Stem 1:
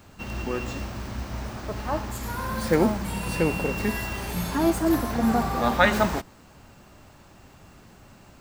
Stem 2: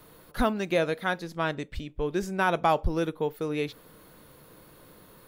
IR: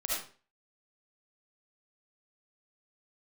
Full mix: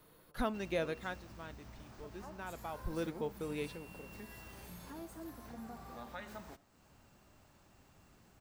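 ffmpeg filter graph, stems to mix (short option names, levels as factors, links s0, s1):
-filter_complex "[0:a]highshelf=f=7300:g=4.5,acompressor=threshold=0.00891:ratio=2,adelay=350,volume=0.188,asplit=2[s0][s1];[s1]volume=0.0794[s2];[1:a]volume=1.12,afade=t=out:st=0.93:d=0.33:silence=0.281838,afade=t=in:st=2.75:d=0.24:silence=0.281838[s3];[2:a]atrim=start_sample=2205[s4];[s2][s4]afir=irnorm=-1:irlink=0[s5];[s0][s3][s5]amix=inputs=3:normalize=0"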